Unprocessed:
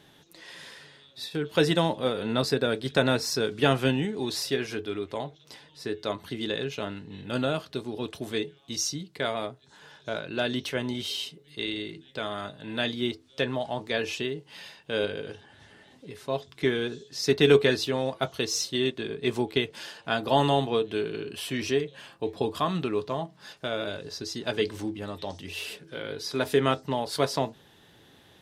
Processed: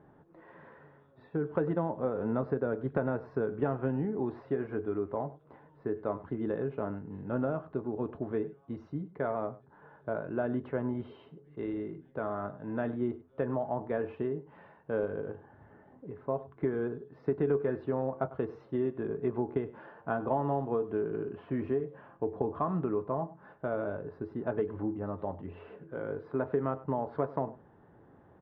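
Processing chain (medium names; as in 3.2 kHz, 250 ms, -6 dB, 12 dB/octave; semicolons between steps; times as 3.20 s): low-pass 1.3 kHz 24 dB/octave; compression 4:1, threshold -27 dBFS, peak gain reduction 12 dB; on a send: delay 99 ms -17.5 dB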